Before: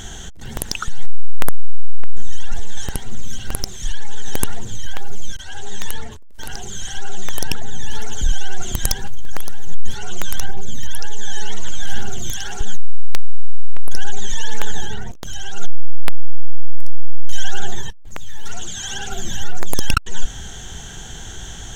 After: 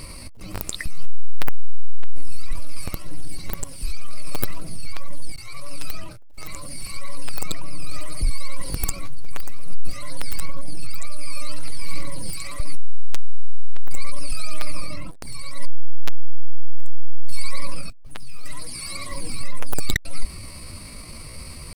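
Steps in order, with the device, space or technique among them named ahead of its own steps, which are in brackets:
chipmunk voice (pitch shifter +6 semitones)
level −4 dB

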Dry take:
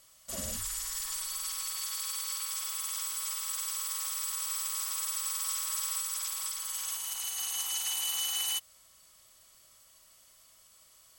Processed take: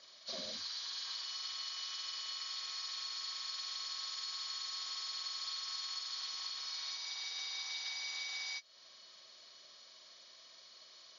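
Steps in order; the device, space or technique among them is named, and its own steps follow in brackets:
hearing aid with frequency lowering (hearing-aid frequency compression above 1,300 Hz 1.5 to 1; downward compressor 3 to 1, threshold −45 dBFS, peak gain reduction 12 dB; loudspeaker in its box 300–5,100 Hz, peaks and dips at 870 Hz −4 dB, 1,300 Hz −3 dB, 2,600 Hz −9 dB)
level +5.5 dB

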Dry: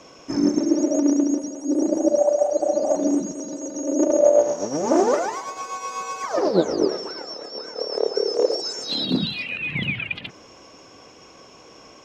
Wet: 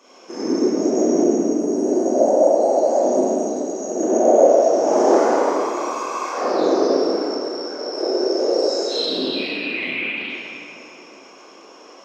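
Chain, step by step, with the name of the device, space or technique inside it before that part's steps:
whispering ghost (random phases in short frames; high-pass filter 270 Hz 24 dB per octave; convolution reverb RT60 3.0 s, pre-delay 24 ms, DRR −10 dB)
level −7 dB

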